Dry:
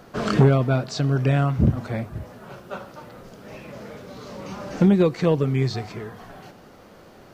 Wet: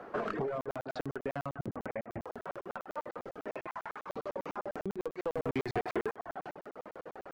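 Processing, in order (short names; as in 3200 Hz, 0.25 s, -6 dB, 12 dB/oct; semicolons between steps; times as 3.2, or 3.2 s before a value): on a send: loudspeakers at several distances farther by 27 m -10 dB, 61 m -11 dB; on the sum: vocal rider within 4 dB 0.5 s; three-band isolator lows -17 dB, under 300 Hz, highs -22 dB, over 2100 Hz; added harmonics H 2 -11 dB, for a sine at -11 dBFS; in parallel at -3.5 dB: overloaded stage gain 26 dB; 1.7–2.27 on the sum: steep low-pass 3000 Hz 72 dB/oct; 3.67–4.1 resonant low shelf 690 Hz -8.5 dB, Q 3; compressor 4:1, threshold -30 dBFS, peak gain reduction 11.5 dB; 5.35–6.12 sample leveller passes 2; reverb removal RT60 0.83 s; crackling interface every 0.10 s, samples 2048, zero, from 0.61; gain -2.5 dB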